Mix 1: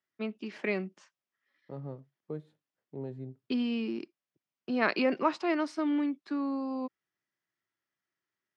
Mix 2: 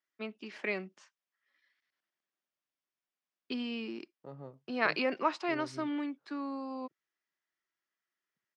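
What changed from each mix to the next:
second voice: entry +2.55 s
master: add low-shelf EQ 420 Hz −9.5 dB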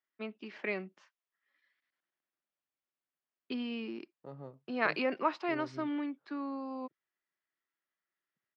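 first voice: add high-frequency loss of the air 150 metres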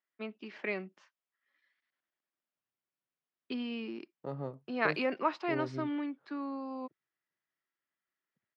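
second voice +8.0 dB

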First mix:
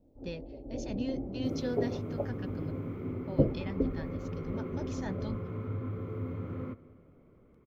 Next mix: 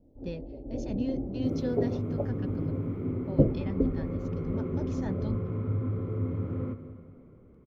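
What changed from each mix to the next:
second sound: send +9.0 dB
master: add tilt shelving filter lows +4.5 dB, about 800 Hz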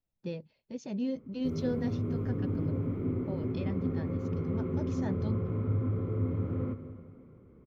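first sound: muted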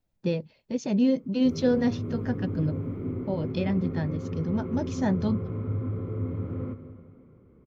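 speech +10.5 dB

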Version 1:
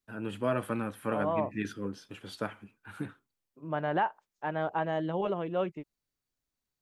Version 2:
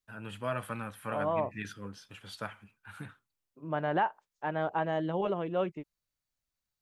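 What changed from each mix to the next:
first voice: add parametric band 330 Hz −12.5 dB 1.4 octaves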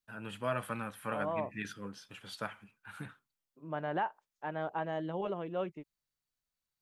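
second voice −5.0 dB
master: add parametric band 95 Hz −8 dB 0.39 octaves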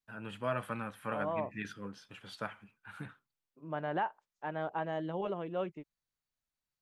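first voice: add high-shelf EQ 5,500 Hz −8.5 dB

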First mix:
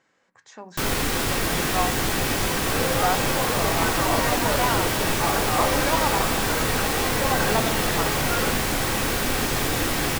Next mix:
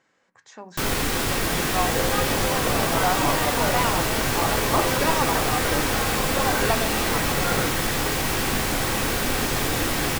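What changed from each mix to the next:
second sound: entry −0.85 s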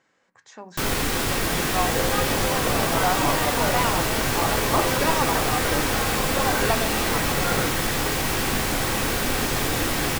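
nothing changed

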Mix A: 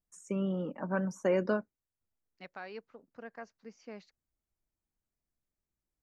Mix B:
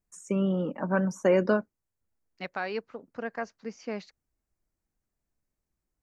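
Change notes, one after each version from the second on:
first voice +6.0 dB
second voice +11.5 dB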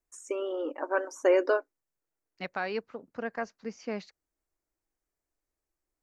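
first voice: add linear-phase brick-wall high-pass 270 Hz

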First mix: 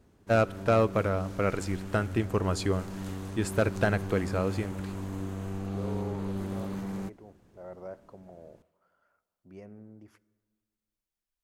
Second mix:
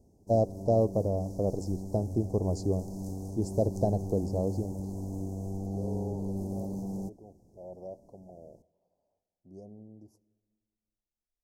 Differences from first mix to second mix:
first voice: add high-frequency loss of the air 81 metres
master: add elliptic band-stop filter 770–5,400 Hz, stop band 40 dB

